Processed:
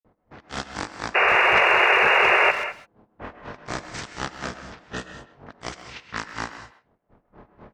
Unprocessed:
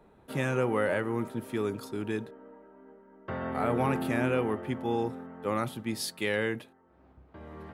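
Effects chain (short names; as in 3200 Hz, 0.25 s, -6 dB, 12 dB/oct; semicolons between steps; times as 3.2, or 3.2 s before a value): spectral contrast lowered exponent 0.32; low-pass opened by the level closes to 1700 Hz, open at -27 dBFS; dynamic EQ 3300 Hz, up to +5 dB, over -44 dBFS, Q 0.91; in parallel at -1 dB: compressor, threshold -39 dBFS, peak gain reduction 17 dB; on the sum: grains 0.169 s, grains 4.1/s, pitch spread up and down by 0 st; painted sound noise, 1.15–2.51, 660–5400 Hz -15 dBFS; pitch shift -11 st; speakerphone echo 0.13 s, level -12 dB; non-linear reverb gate 0.23 s rising, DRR 9.5 dB; gain -2 dB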